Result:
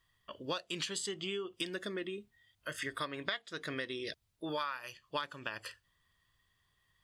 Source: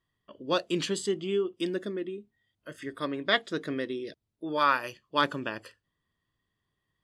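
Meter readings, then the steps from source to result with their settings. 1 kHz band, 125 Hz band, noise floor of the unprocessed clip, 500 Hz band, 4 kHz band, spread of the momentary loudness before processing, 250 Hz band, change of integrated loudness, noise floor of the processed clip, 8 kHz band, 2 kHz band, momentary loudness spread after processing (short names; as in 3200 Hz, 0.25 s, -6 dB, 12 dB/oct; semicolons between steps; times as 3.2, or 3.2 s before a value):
-11.5 dB, -8.0 dB, -83 dBFS, -10.0 dB, -5.0 dB, 15 LU, -10.5 dB, -9.5 dB, -77 dBFS, -1.5 dB, -7.5 dB, 9 LU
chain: bell 280 Hz -14 dB 2.4 oct; compressor 16:1, threshold -43 dBFS, peak gain reduction 22.5 dB; gain +9 dB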